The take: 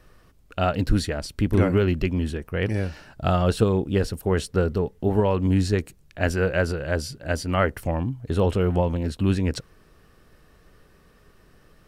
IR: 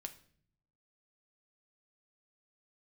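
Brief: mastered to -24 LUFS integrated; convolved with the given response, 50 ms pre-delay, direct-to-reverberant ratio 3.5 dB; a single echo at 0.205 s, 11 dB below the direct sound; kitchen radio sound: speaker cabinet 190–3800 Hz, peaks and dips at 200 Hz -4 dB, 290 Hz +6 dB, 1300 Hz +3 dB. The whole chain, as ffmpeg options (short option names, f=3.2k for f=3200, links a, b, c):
-filter_complex "[0:a]aecho=1:1:205:0.282,asplit=2[a][b];[1:a]atrim=start_sample=2205,adelay=50[c];[b][c]afir=irnorm=-1:irlink=0,volume=0.5dB[d];[a][d]amix=inputs=2:normalize=0,highpass=190,equalizer=f=200:t=q:w=4:g=-4,equalizer=f=290:t=q:w=4:g=6,equalizer=f=1.3k:t=q:w=4:g=3,lowpass=f=3.8k:w=0.5412,lowpass=f=3.8k:w=1.3066,volume=-0.5dB"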